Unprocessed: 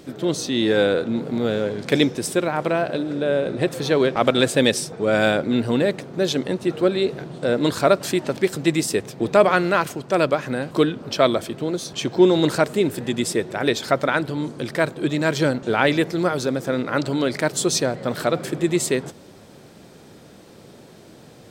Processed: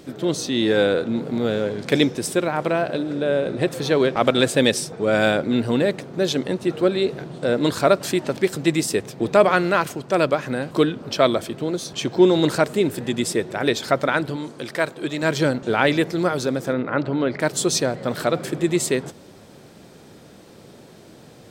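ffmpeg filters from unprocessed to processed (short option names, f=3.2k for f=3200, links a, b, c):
-filter_complex "[0:a]asettb=1/sr,asplit=3[a][b][c];[a]atrim=end=14.364[d];[b]atrim=start=14.36:end=15.23,asetpts=PTS-STARTPTS,afade=t=in:d=0.004:c=qsin,afade=t=out:st=0.866:d=0.004:c=qsin,lowshelf=f=290:g=-9.5[e];[c]atrim=start=15.226[f];[d][e]acrossfade=d=0.004:c1=hsin:c2=qsin[g];[g][f]acrossfade=d=0.004:c1=qsin:c2=hsin,asplit=3[h][i][j];[h]afade=t=out:st=16.72:d=0.02[k];[i]lowpass=2.3k,afade=t=in:st=16.72:d=0.02,afade=t=out:st=17.39:d=0.02[l];[j]afade=t=in:st=17.39:d=0.02[m];[k][l][m]amix=inputs=3:normalize=0"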